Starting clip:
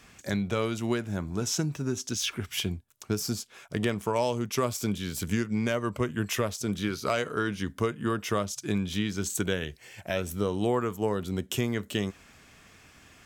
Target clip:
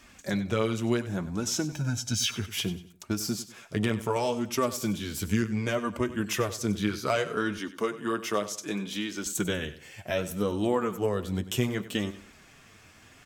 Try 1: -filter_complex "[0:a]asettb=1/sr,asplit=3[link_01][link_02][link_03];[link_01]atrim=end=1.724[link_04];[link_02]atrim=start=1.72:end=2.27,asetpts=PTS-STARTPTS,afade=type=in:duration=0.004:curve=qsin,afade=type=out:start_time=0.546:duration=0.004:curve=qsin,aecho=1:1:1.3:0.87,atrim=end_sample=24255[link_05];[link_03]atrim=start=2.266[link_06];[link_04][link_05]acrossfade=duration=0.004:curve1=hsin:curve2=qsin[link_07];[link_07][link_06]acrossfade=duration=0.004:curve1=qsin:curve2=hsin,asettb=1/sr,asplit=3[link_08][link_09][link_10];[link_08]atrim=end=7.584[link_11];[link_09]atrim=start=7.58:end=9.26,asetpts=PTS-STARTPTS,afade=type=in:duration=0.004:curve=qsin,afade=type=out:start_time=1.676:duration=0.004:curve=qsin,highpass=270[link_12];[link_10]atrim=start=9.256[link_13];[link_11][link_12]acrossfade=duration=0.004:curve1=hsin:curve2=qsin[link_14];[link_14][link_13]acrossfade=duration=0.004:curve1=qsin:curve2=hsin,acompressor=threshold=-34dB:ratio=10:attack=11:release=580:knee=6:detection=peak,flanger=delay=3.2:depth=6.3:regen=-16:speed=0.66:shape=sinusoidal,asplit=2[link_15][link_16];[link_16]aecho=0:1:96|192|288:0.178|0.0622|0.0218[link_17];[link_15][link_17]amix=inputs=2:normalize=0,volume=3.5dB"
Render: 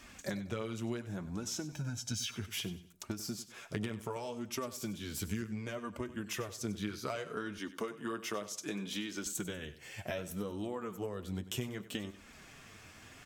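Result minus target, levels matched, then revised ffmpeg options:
downward compressor: peak gain reduction +14.5 dB
-filter_complex "[0:a]asettb=1/sr,asplit=3[link_01][link_02][link_03];[link_01]atrim=end=1.724[link_04];[link_02]atrim=start=1.72:end=2.27,asetpts=PTS-STARTPTS,afade=type=in:duration=0.004:curve=qsin,afade=type=out:start_time=0.546:duration=0.004:curve=qsin,aecho=1:1:1.3:0.87,atrim=end_sample=24255[link_05];[link_03]atrim=start=2.266[link_06];[link_04][link_05]acrossfade=duration=0.004:curve1=hsin:curve2=qsin[link_07];[link_07][link_06]acrossfade=duration=0.004:curve1=qsin:curve2=hsin,asettb=1/sr,asplit=3[link_08][link_09][link_10];[link_08]atrim=end=7.584[link_11];[link_09]atrim=start=7.58:end=9.26,asetpts=PTS-STARTPTS,afade=type=in:duration=0.004:curve=qsin,afade=type=out:start_time=1.676:duration=0.004:curve=qsin,highpass=270[link_12];[link_10]atrim=start=9.256[link_13];[link_11][link_12]acrossfade=duration=0.004:curve1=hsin:curve2=qsin[link_14];[link_14][link_13]acrossfade=duration=0.004:curve1=qsin:curve2=hsin,flanger=delay=3.2:depth=6.3:regen=-16:speed=0.66:shape=sinusoidal,asplit=2[link_15][link_16];[link_16]aecho=0:1:96|192|288:0.178|0.0622|0.0218[link_17];[link_15][link_17]amix=inputs=2:normalize=0,volume=3.5dB"

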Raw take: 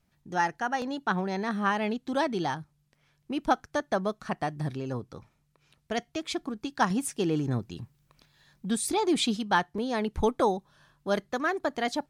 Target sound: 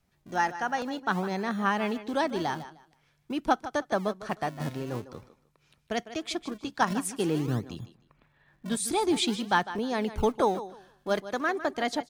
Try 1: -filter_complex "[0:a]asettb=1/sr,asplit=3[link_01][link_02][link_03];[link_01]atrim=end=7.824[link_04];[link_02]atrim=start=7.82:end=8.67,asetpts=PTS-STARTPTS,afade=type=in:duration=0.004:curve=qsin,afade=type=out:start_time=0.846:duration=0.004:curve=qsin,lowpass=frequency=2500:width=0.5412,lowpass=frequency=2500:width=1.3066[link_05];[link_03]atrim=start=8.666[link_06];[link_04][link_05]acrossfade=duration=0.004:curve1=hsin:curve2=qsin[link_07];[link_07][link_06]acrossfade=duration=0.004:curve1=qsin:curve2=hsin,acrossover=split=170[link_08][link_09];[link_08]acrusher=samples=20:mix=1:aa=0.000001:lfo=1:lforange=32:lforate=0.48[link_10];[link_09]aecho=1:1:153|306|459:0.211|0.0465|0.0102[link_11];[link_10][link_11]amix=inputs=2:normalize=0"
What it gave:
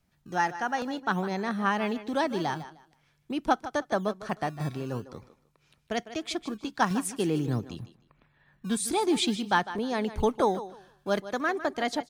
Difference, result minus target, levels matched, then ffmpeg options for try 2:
sample-and-hold swept by an LFO: distortion −11 dB
-filter_complex "[0:a]asettb=1/sr,asplit=3[link_01][link_02][link_03];[link_01]atrim=end=7.824[link_04];[link_02]atrim=start=7.82:end=8.67,asetpts=PTS-STARTPTS,afade=type=in:duration=0.004:curve=qsin,afade=type=out:start_time=0.846:duration=0.004:curve=qsin,lowpass=frequency=2500:width=0.5412,lowpass=frequency=2500:width=1.3066[link_05];[link_03]atrim=start=8.666[link_06];[link_04][link_05]acrossfade=duration=0.004:curve1=hsin:curve2=qsin[link_07];[link_07][link_06]acrossfade=duration=0.004:curve1=qsin:curve2=hsin,acrossover=split=170[link_08][link_09];[link_08]acrusher=samples=63:mix=1:aa=0.000001:lfo=1:lforange=101:lforate=0.48[link_10];[link_09]aecho=1:1:153|306|459:0.211|0.0465|0.0102[link_11];[link_10][link_11]amix=inputs=2:normalize=0"

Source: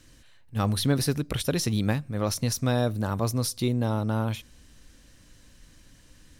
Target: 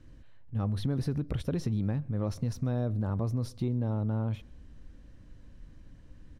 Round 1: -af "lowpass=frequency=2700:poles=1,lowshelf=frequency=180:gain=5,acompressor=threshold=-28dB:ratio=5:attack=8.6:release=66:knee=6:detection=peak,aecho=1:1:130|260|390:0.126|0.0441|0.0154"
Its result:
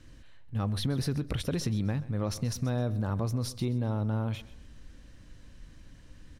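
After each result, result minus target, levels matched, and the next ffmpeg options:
echo-to-direct +10.5 dB; 2,000 Hz band +6.0 dB
-af "lowpass=frequency=2700:poles=1,lowshelf=frequency=180:gain=5,acompressor=threshold=-28dB:ratio=5:attack=8.6:release=66:knee=6:detection=peak,aecho=1:1:130|260:0.0376|0.0132"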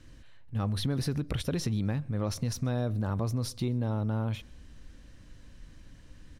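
2,000 Hz band +6.0 dB
-af "lowpass=frequency=750:poles=1,lowshelf=frequency=180:gain=5,acompressor=threshold=-28dB:ratio=5:attack=8.6:release=66:knee=6:detection=peak,aecho=1:1:130|260:0.0376|0.0132"

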